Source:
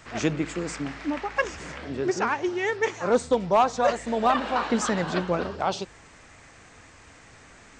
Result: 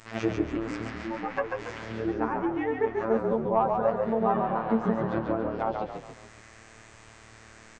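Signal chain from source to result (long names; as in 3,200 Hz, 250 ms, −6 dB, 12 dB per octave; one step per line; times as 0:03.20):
treble cut that deepens with the level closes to 990 Hz, closed at −22.5 dBFS
phases set to zero 112 Hz
on a send: echo with shifted repeats 140 ms, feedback 42%, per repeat −37 Hz, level −4 dB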